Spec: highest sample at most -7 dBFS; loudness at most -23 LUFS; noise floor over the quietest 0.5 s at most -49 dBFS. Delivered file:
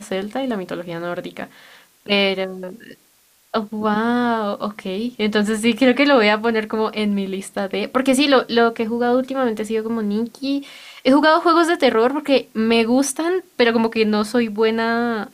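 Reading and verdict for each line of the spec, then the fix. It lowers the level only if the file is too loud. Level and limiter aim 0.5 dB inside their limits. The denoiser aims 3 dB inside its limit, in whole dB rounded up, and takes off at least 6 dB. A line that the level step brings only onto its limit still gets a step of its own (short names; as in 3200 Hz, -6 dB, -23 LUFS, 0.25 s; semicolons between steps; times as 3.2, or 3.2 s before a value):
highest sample -4.5 dBFS: fail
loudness -19.0 LUFS: fail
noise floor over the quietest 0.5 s -57 dBFS: OK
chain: gain -4.5 dB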